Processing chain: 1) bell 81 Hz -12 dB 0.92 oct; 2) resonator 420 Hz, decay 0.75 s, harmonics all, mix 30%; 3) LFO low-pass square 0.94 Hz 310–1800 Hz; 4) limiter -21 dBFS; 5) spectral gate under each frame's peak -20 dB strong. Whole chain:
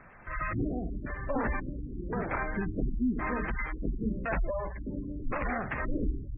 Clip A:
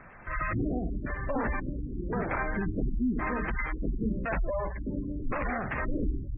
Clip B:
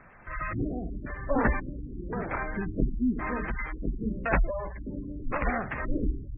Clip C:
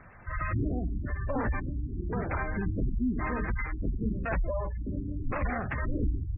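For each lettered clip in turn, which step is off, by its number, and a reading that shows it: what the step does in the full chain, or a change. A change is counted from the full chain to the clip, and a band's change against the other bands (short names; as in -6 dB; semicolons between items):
2, momentary loudness spread change -2 LU; 4, crest factor change +7.0 dB; 1, 125 Hz band +5.5 dB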